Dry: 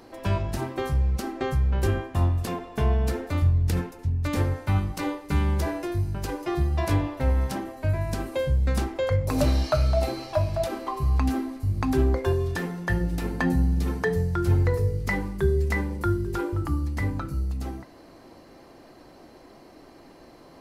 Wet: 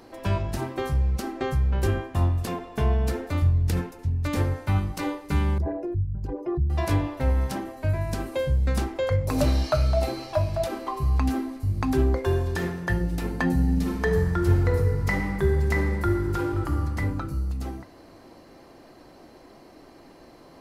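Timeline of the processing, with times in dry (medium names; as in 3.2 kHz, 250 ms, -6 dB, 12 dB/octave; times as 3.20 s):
5.58–6.70 s: resonances exaggerated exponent 2
12.21–12.63 s: reverb throw, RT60 1.2 s, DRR 4.5 dB
13.51–16.72 s: reverb throw, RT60 2.3 s, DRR 3.5 dB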